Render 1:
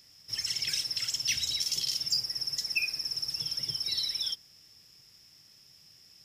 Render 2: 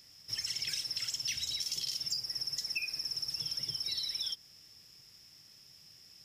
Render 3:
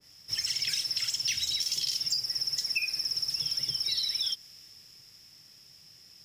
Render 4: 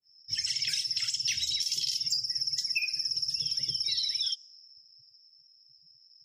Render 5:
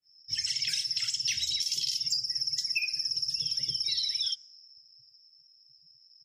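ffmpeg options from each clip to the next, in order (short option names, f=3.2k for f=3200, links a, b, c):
-af "acompressor=threshold=-33dB:ratio=4"
-filter_complex "[0:a]acrossover=split=170|6200[a][b][c];[c]asoftclip=type=tanh:threshold=-39.5dB[d];[a][b][d]amix=inputs=3:normalize=0,adynamicequalizer=threshold=0.002:dfrequency=1600:dqfactor=0.7:tfrequency=1600:tqfactor=0.7:attack=5:release=100:ratio=0.375:range=2:mode=boostabove:tftype=highshelf,volume=2.5dB"
-af "afftdn=nr=30:nf=-48"
-af "bandreject=f=99.51:t=h:w=4,bandreject=f=199.02:t=h:w=4,bandreject=f=298.53:t=h:w=4,bandreject=f=398.04:t=h:w=4,bandreject=f=497.55:t=h:w=4,bandreject=f=597.06:t=h:w=4,bandreject=f=696.57:t=h:w=4,bandreject=f=796.08:t=h:w=4,bandreject=f=895.59:t=h:w=4,bandreject=f=995.1:t=h:w=4,bandreject=f=1.09461k:t=h:w=4,bandreject=f=1.19412k:t=h:w=4,bandreject=f=1.29363k:t=h:w=4,bandreject=f=1.39314k:t=h:w=4,bandreject=f=1.49265k:t=h:w=4,bandreject=f=1.59216k:t=h:w=4,bandreject=f=1.69167k:t=h:w=4,bandreject=f=1.79118k:t=h:w=4,bandreject=f=1.89069k:t=h:w=4,bandreject=f=1.9902k:t=h:w=4,bandreject=f=2.08971k:t=h:w=4,bandreject=f=2.18922k:t=h:w=4,bandreject=f=2.28873k:t=h:w=4,aresample=32000,aresample=44100"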